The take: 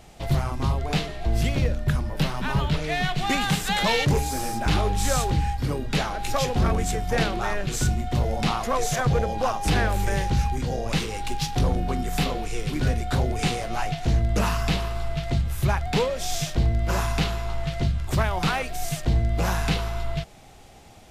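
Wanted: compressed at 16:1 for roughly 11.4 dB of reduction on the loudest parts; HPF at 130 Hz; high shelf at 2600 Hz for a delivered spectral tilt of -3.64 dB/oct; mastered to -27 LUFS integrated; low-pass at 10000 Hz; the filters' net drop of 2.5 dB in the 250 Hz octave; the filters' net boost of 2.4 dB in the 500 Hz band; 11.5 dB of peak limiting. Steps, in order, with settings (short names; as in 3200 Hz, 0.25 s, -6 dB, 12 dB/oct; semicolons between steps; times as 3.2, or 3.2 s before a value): HPF 130 Hz; LPF 10000 Hz; bell 250 Hz -3.5 dB; bell 500 Hz +3.5 dB; high shelf 2600 Hz +6 dB; compressor 16:1, threshold -28 dBFS; gain +8 dB; limiter -18 dBFS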